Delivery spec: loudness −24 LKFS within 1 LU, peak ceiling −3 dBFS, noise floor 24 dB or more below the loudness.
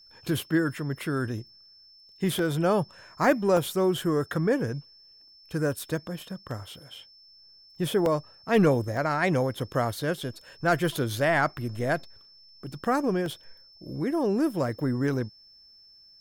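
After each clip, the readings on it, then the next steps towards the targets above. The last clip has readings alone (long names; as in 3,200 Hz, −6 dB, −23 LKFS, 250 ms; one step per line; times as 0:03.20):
number of dropouts 7; longest dropout 1.4 ms; interfering tone 5,300 Hz; level of the tone −52 dBFS; integrated loudness −27.5 LKFS; sample peak −11.5 dBFS; target loudness −24.0 LKFS
→ repair the gap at 0:02.39/0:03.57/0:06.51/0:08.06/0:08.97/0:11.58/0:13.26, 1.4 ms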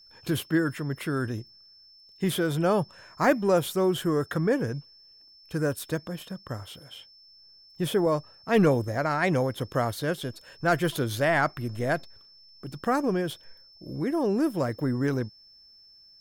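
number of dropouts 0; interfering tone 5,300 Hz; level of the tone −52 dBFS
→ notch filter 5,300 Hz, Q 30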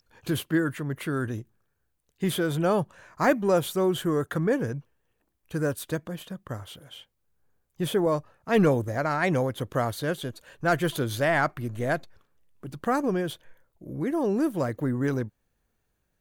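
interfering tone none found; integrated loudness −27.0 LKFS; sample peak −11.5 dBFS; target loudness −24.0 LKFS
→ level +3 dB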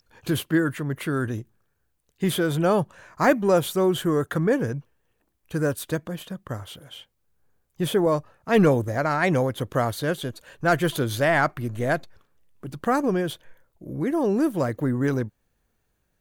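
integrated loudness −24.0 LKFS; sample peak −8.5 dBFS; background noise floor −73 dBFS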